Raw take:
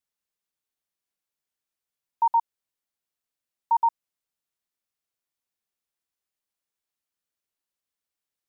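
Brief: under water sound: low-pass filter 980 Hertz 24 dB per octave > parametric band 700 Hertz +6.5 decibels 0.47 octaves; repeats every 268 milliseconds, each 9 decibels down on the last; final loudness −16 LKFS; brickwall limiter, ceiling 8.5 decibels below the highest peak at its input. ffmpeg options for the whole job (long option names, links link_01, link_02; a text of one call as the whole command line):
ffmpeg -i in.wav -af "alimiter=limit=-24dB:level=0:latency=1,lowpass=frequency=980:width=0.5412,lowpass=frequency=980:width=1.3066,equalizer=frequency=700:width_type=o:width=0.47:gain=6.5,aecho=1:1:268|536|804|1072:0.355|0.124|0.0435|0.0152,volume=19.5dB" out.wav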